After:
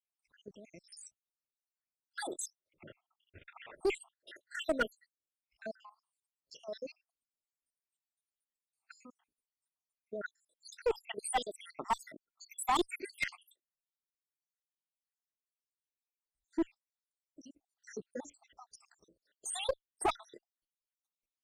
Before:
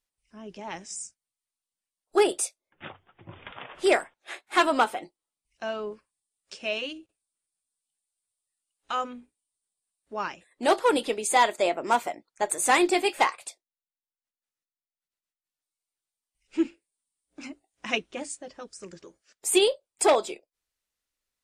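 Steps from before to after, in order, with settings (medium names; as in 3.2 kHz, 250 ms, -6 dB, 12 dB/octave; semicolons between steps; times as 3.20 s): random holes in the spectrogram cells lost 80%; 11.65–13.03 s: comb 0.9 ms, depth 59%; level held to a coarse grid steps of 13 dB; one-sided clip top -27.5 dBFS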